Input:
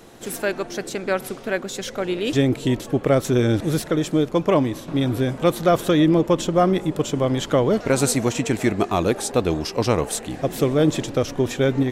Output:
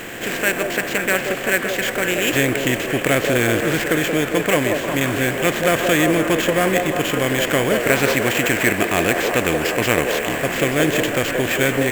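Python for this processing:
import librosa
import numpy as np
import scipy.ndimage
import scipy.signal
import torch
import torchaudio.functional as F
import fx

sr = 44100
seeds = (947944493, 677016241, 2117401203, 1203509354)

p1 = fx.bin_compress(x, sr, power=0.6)
p2 = fx.band_shelf(p1, sr, hz=2200.0, db=13.5, octaves=1.2)
p3 = fx.sample_hold(p2, sr, seeds[0], rate_hz=10000.0, jitter_pct=0)
p4 = p3 + fx.echo_stepped(p3, sr, ms=177, hz=520.0, octaves=0.7, feedback_pct=70, wet_db=-1.0, dry=0)
y = p4 * 10.0 ** (-4.5 / 20.0)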